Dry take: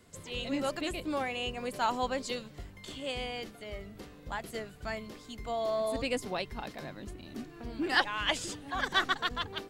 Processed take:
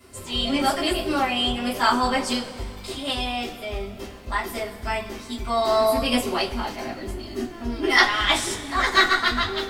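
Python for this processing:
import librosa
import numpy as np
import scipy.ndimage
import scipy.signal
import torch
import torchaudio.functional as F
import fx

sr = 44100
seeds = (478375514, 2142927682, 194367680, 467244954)

y = fx.formant_shift(x, sr, semitones=2)
y = fx.rev_double_slope(y, sr, seeds[0], early_s=0.21, late_s=2.1, knee_db=-21, drr_db=-8.5)
y = y * librosa.db_to_amplitude(2.0)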